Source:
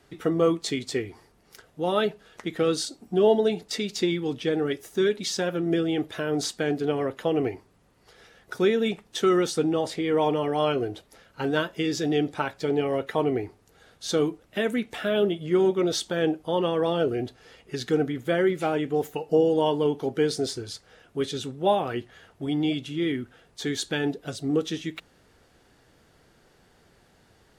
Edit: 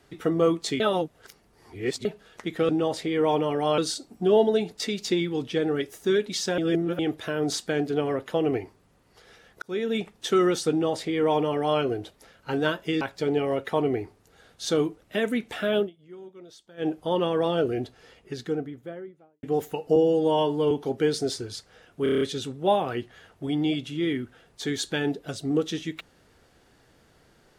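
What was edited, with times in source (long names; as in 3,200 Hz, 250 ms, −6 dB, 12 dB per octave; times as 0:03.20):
0:00.80–0:02.05: reverse
0:05.49–0:05.90: reverse
0:08.53–0:09.06: fade in equal-power
0:09.62–0:10.71: duplicate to 0:02.69
0:11.92–0:12.43: remove
0:15.20–0:16.31: duck −22.5 dB, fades 0.12 s
0:17.20–0:18.85: fade out and dull
0:19.38–0:19.88: time-stretch 1.5×
0:21.20: stutter 0.03 s, 7 plays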